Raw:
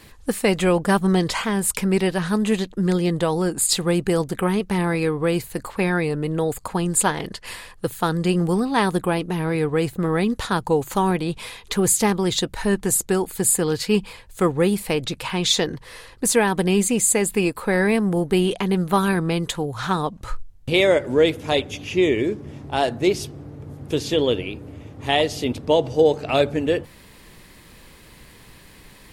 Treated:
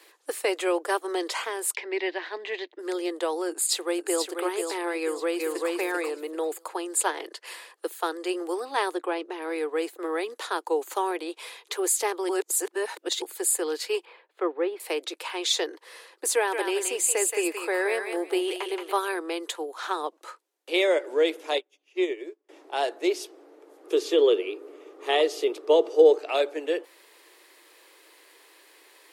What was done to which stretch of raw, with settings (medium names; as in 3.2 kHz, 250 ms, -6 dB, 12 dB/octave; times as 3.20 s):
1.75–2.79 s: cabinet simulation 120–4400 Hz, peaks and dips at 490 Hz -7 dB, 1.3 kHz -10 dB, 2 kHz +8 dB
3.49–4.27 s: echo throw 490 ms, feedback 45%, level -6 dB
5.00–5.71 s: echo throw 390 ms, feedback 20%, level -1 dB
8.94–9.42 s: distance through air 75 m
12.29–13.22 s: reverse
14.05–14.80 s: distance through air 380 m
16.34–18.93 s: thinning echo 175 ms, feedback 24%, high-pass 800 Hz, level -4 dB
21.58–22.49 s: upward expansion 2.5:1, over -35 dBFS
23.84–26.18 s: small resonant body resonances 400/1200 Hz, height 10 dB, ringing for 25 ms
whole clip: steep high-pass 320 Hz 72 dB/octave; trim -5.5 dB